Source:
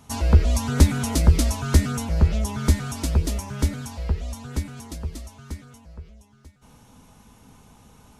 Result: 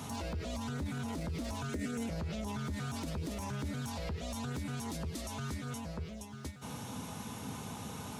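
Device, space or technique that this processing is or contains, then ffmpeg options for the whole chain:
broadcast voice chain: -filter_complex "[0:a]highpass=frequency=88:width=0.5412,highpass=frequency=88:width=1.3066,deesser=0.8,acompressor=threshold=-43dB:ratio=3,equalizer=frequency=3700:width_type=o:width=0.25:gain=3,alimiter=level_in=16.5dB:limit=-24dB:level=0:latency=1:release=26,volume=-16.5dB,asettb=1/sr,asplit=3[link_01][link_02][link_03];[link_01]atrim=end=1.694[link_04];[link_02]atrim=start=1.69:end=2.1,asetpts=PTS-STARTPTS,afade=type=in:duration=0.004:curve=qsin,afade=type=out:start_time=0.406:duration=0.004:curve=qsin,equalizer=frequency=125:width_type=o:width=1:gain=-9,equalizer=frequency=250:width_type=o:width=1:gain=5,equalizer=frequency=500:width_type=o:width=1:gain=7,equalizer=frequency=1000:width_type=o:width=1:gain=-10,equalizer=frequency=2000:width_type=o:width=1:gain=7,equalizer=frequency=4000:width_type=o:width=1:gain=-4,equalizer=frequency=8000:width_type=o:width=1:gain=5[link_05];[link_03]atrim=start=2.096[link_06];[link_04][link_05]acrossfade=duration=0.004:curve1=hsin:curve2=qsin[link_07];[link_07][link_06]acrossfade=duration=0.004:curve1=qsin:curve2=hsin,volume=9.5dB"

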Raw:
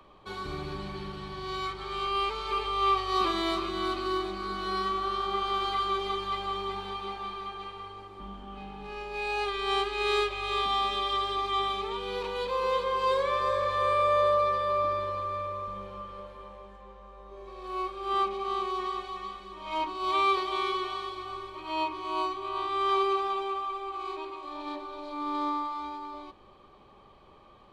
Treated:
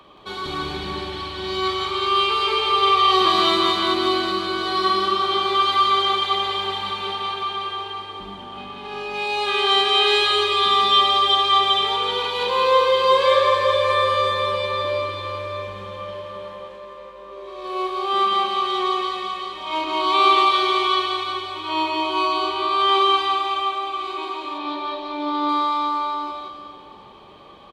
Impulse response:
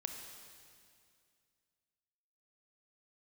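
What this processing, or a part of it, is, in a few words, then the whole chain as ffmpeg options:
stadium PA: -filter_complex "[0:a]highpass=frequency=120:poles=1,equalizer=frequency=3400:width_type=o:width=0.59:gain=6,aecho=1:1:174.9|207:0.794|0.316[link_01];[1:a]atrim=start_sample=2205[link_02];[link_01][link_02]afir=irnorm=-1:irlink=0,asettb=1/sr,asplit=3[link_03][link_04][link_05];[link_03]atrim=end=24.584[link_06];[link_04]atrim=start=24.58:end=25.49,asetpts=PTS-STARTPTS,afade=type=in:duration=0.004:curve=qsin,afade=type=out:start_time=0.906:duration=0.004:curve=qsin,lowpass=5000[link_07];[link_05]atrim=start=25.486[link_08];[link_06][link_07]acrossfade=duration=0.004:curve1=hsin:curve2=qsin[link_09];[link_09][link_08]acrossfade=duration=0.004:curve1=qsin:curve2=hsin,volume=9dB"

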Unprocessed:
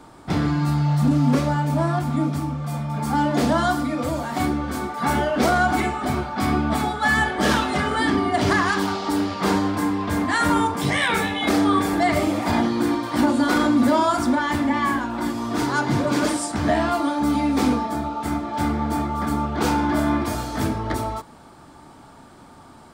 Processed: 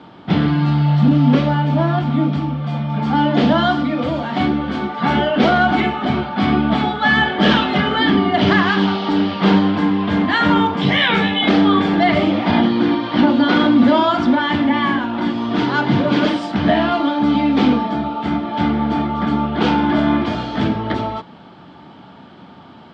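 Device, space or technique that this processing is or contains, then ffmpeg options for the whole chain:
guitar cabinet: -filter_complex "[0:a]asettb=1/sr,asplit=3[link_01][link_02][link_03];[link_01]atrim=end=12.304[link_04];[link_02]atrim=start=12.3:end=13.54,asetpts=PTS-STARTPTS,afade=type=in:duration=0.004:curve=qsin,afade=type=out:start_time=1.236:duration=0.004:curve=qsin,lowpass=frequency=6400:width=0.5412,lowpass=frequency=6400:width=1.3066[link_05];[link_03]atrim=start=13.536[link_06];[link_04][link_05]acrossfade=duration=0.004:curve1=hsin:curve2=qsin[link_07];[link_07][link_06]acrossfade=duration=0.004:curve1=qsin:curve2=hsin,highpass=100,equalizer=frequency=190:width_type=q:width=4:gain=8,equalizer=frequency=1100:width_type=q:width=4:gain=-3,equalizer=frequency=3100:width_type=q:width=4:gain=8,lowpass=frequency=4100:width=0.5412,lowpass=frequency=4100:width=1.3066,volume=4.5dB"

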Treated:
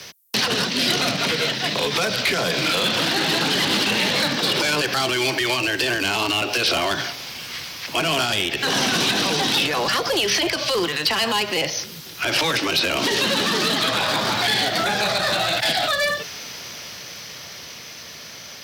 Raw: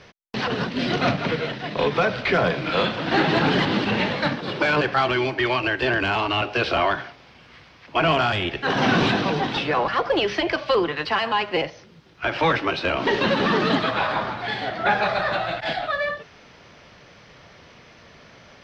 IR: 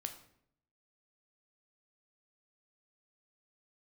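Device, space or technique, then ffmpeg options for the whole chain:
FM broadcast chain: -filter_complex "[0:a]highpass=78,dynaudnorm=framelen=580:gausssize=11:maxgain=11.5dB,acrossover=split=180|490|3600[link_01][link_02][link_03][link_04];[link_01]acompressor=threshold=-36dB:ratio=4[link_05];[link_02]acompressor=threshold=-25dB:ratio=4[link_06];[link_03]acompressor=threshold=-25dB:ratio=4[link_07];[link_04]acompressor=threshold=-37dB:ratio=4[link_08];[link_05][link_06][link_07][link_08]amix=inputs=4:normalize=0,aemphasis=mode=production:type=75fm,alimiter=limit=-17dB:level=0:latency=1:release=66,asoftclip=type=hard:threshold=-20.5dB,lowpass=frequency=15000:width=0.5412,lowpass=frequency=15000:width=1.3066,aemphasis=mode=production:type=75fm,volume=4dB"

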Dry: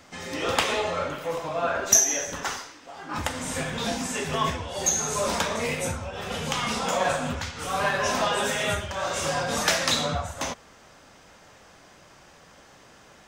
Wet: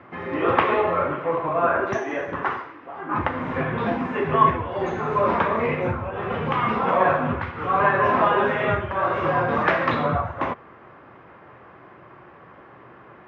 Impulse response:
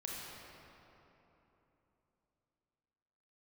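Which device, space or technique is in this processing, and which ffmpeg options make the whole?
bass cabinet: -af "highpass=79,equalizer=frequency=120:width_type=q:width=4:gain=7,equalizer=frequency=360:width_type=q:width=4:gain=9,equalizer=frequency=1100:width_type=q:width=4:gain=7,lowpass=frequency=2200:width=0.5412,lowpass=frequency=2200:width=1.3066,volume=4dB"

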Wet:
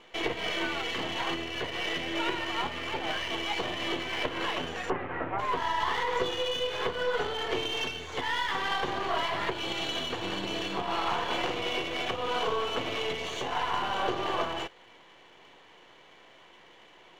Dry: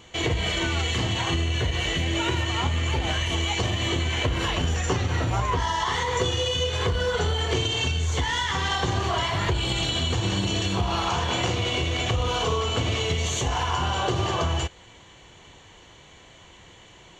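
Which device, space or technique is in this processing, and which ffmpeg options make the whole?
crystal radio: -filter_complex "[0:a]highpass=310,lowpass=3000,aeval=exprs='if(lt(val(0),0),0.447*val(0),val(0))':channel_layout=same,asplit=3[link_01][link_02][link_03];[link_01]afade=type=out:start_time=4.89:duration=0.02[link_04];[link_02]lowpass=frequency=2200:width=0.5412,lowpass=frequency=2200:width=1.3066,afade=type=in:start_time=4.89:duration=0.02,afade=type=out:start_time=5.38:duration=0.02[link_05];[link_03]afade=type=in:start_time=5.38:duration=0.02[link_06];[link_04][link_05][link_06]amix=inputs=3:normalize=0"

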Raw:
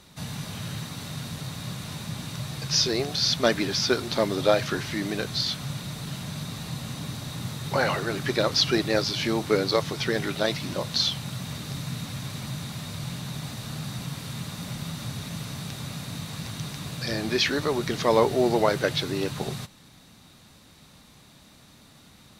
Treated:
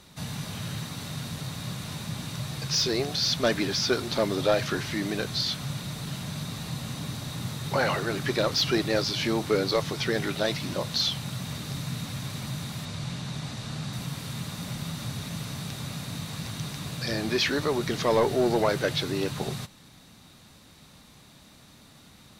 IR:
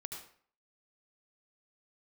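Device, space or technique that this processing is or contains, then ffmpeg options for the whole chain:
saturation between pre-emphasis and de-emphasis: -filter_complex "[0:a]asettb=1/sr,asplit=3[link_01][link_02][link_03];[link_01]atrim=end=12.854[link_04];[link_02]atrim=start=12.85:end=13.93,asetpts=PTS-STARTPTS,afade=type=in:duration=0.004:curve=qsin,afade=type=out:start_time=1.076:duration=0.004:curve=qsin,lowpass=8300[link_05];[link_03]atrim=start=13.926[link_06];[link_04][link_05]acrossfade=duration=0.004:curve1=hsin:curve2=qsin[link_07];[link_07][link_06]acrossfade=duration=0.004:curve1=qsin:curve2=hsin,highshelf=frequency=5600:gain=11.5,asoftclip=type=tanh:threshold=-14dB,highshelf=frequency=5600:gain=-11.5"

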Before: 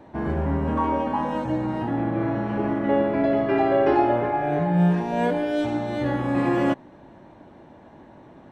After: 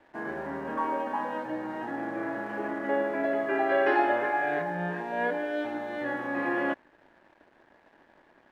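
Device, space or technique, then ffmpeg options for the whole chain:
pocket radio on a weak battery: -filter_complex "[0:a]asettb=1/sr,asplit=3[link_01][link_02][link_03];[link_01]atrim=end=3.694[link_04];[link_02]atrim=start=3.69:end=4.62,asetpts=PTS-STARTPTS,afade=type=in:duration=0.004:curve=qsin,afade=type=out:start_time=0.926:duration=0.004:curve=qsin,highshelf=frequency=2300:gain=12[link_05];[link_03]atrim=start=4.616[link_06];[link_04][link_05]acrossfade=duration=0.004:curve1=hsin:curve2=qsin[link_07];[link_07][link_06]acrossfade=duration=0.004:curve1=qsin:curve2=hsin,highpass=340,lowpass=3100,aeval=exprs='sgn(val(0))*max(abs(val(0))-0.00224,0)':channel_layout=same,equalizer=frequency=1700:width_type=o:width=0.34:gain=9,volume=-5dB"

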